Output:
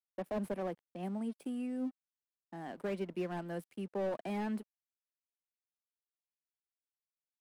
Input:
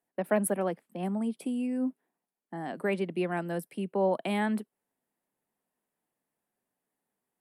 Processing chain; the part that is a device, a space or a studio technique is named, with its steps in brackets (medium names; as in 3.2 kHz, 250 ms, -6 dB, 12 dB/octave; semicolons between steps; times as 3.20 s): early transistor amplifier (crossover distortion -53 dBFS; slew-rate limiter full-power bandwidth 28 Hz); trim -6.5 dB